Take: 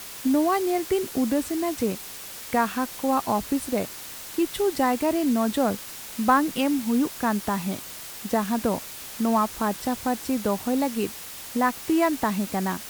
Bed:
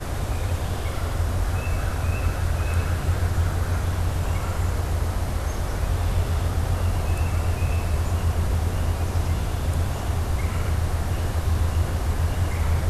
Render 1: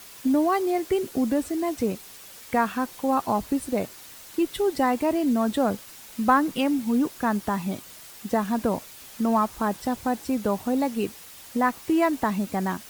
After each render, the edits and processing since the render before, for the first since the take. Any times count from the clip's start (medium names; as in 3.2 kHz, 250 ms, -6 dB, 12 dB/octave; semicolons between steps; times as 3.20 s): noise reduction 7 dB, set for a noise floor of -39 dBFS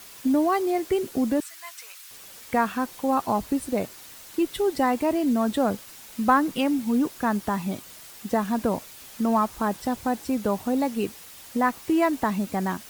1.40–2.11 s: high-pass 1.2 kHz 24 dB/octave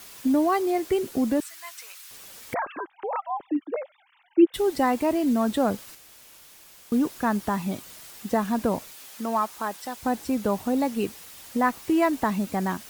2.54–4.54 s: formants replaced by sine waves; 5.95–6.92 s: room tone; 8.91–10.01 s: high-pass 360 Hz -> 1.2 kHz 6 dB/octave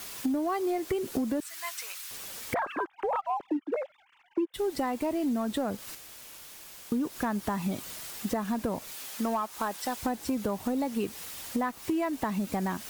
compression 16:1, threshold -29 dBFS, peak gain reduction 18.5 dB; waveshaping leveller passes 1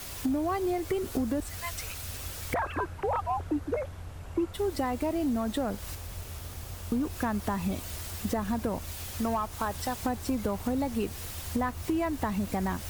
add bed -18 dB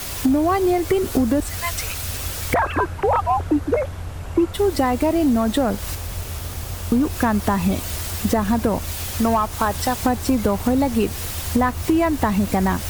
trim +11 dB